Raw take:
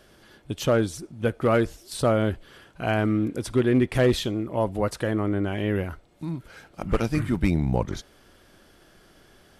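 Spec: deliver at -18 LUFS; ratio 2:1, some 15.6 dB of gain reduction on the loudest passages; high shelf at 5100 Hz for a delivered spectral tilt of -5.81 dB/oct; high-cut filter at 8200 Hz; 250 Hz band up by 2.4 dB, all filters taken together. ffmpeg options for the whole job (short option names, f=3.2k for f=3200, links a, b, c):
-af "lowpass=8.2k,equalizer=f=250:t=o:g=3,highshelf=f=5.1k:g=6.5,acompressor=threshold=-45dB:ratio=2,volume=20.5dB"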